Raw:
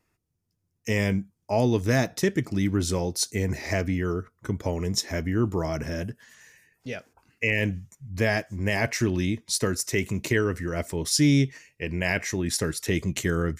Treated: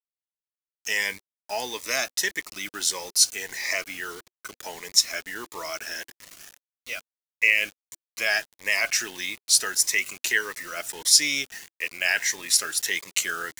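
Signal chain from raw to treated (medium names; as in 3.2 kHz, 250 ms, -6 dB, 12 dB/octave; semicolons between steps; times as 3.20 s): high-pass 1.3 kHz 12 dB/octave; word length cut 8-bit, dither none; Shepard-style phaser rising 1.6 Hz; trim +8.5 dB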